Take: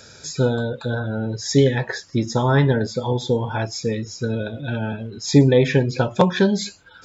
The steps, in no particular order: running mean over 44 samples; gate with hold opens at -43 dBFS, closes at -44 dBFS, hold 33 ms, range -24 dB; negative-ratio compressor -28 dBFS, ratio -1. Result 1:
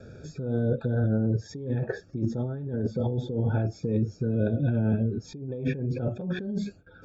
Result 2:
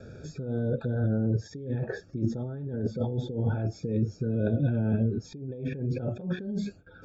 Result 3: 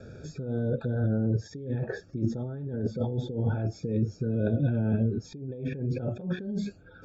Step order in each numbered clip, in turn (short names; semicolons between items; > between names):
gate with hold > running mean > negative-ratio compressor; gate with hold > negative-ratio compressor > running mean; negative-ratio compressor > gate with hold > running mean